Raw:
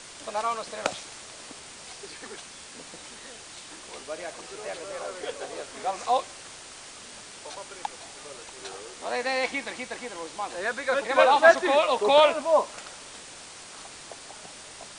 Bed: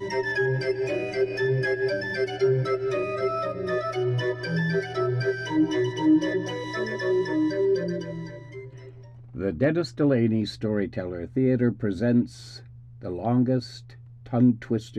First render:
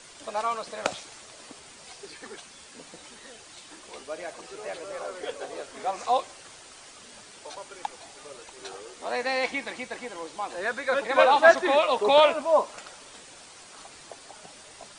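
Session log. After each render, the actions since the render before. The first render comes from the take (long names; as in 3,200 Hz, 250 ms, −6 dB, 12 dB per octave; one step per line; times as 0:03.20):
broadband denoise 6 dB, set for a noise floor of −45 dBFS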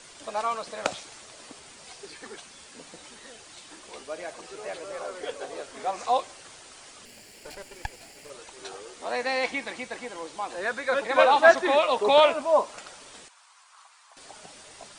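0:07.05–0:08.30: lower of the sound and its delayed copy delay 0.41 ms
0:13.28–0:14.17: four-pole ladder high-pass 910 Hz, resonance 55%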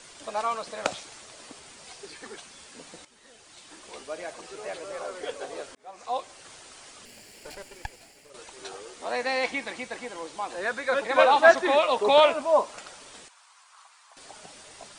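0:03.05–0:03.90: fade in, from −14.5 dB
0:05.75–0:06.53: fade in
0:07.57–0:08.34: fade out, to −9 dB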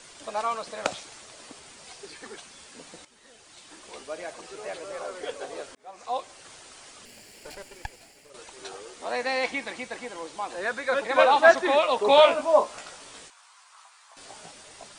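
0:12.08–0:14.51: double-tracking delay 18 ms −4 dB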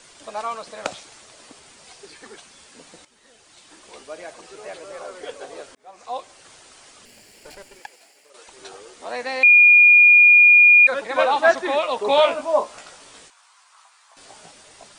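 0:07.80–0:08.48: high-pass filter 400 Hz
0:09.43–0:10.87: beep over 2,430 Hz −7.5 dBFS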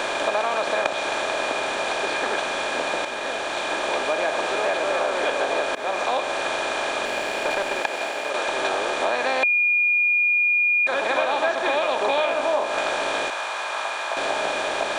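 compressor on every frequency bin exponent 0.4
downward compressor, threshold −19 dBFS, peak gain reduction 11.5 dB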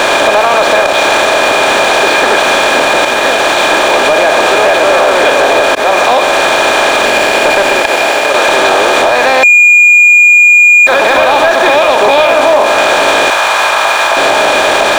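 leveller curve on the samples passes 3
boost into a limiter +8.5 dB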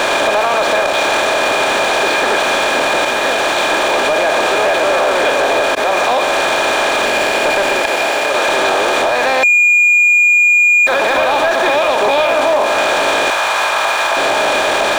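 brickwall limiter −7 dBFS, peak gain reduction 6 dB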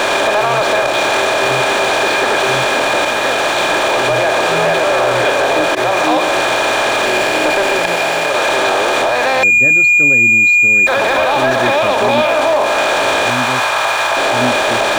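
mix in bed −1.5 dB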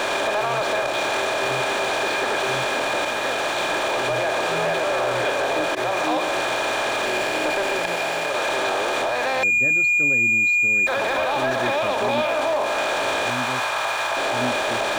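level −9 dB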